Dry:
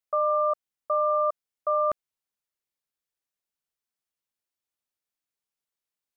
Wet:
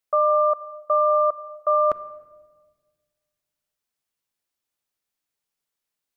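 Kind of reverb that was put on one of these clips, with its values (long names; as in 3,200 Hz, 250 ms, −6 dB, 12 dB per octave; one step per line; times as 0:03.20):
rectangular room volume 1,300 cubic metres, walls mixed, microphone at 0.33 metres
level +5 dB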